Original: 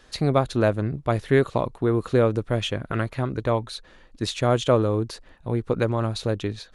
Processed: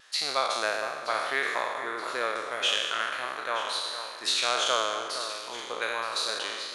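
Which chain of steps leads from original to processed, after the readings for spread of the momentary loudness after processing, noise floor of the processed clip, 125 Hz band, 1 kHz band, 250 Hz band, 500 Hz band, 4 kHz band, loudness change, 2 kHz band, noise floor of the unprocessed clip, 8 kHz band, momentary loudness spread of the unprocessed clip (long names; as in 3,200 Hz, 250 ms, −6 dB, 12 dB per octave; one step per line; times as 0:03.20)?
7 LU, −40 dBFS, below −35 dB, +0.5 dB, −21.5 dB, −10.5 dB, +7.0 dB, −4.5 dB, +4.5 dB, −53 dBFS, +6.5 dB, 8 LU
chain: peak hold with a decay on every bin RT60 1.49 s
high-pass filter 1,200 Hz 12 dB per octave
pitch vibrato 1.5 Hz 20 cents
delay that swaps between a low-pass and a high-pass 462 ms, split 2,100 Hz, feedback 67%, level −9.5 dB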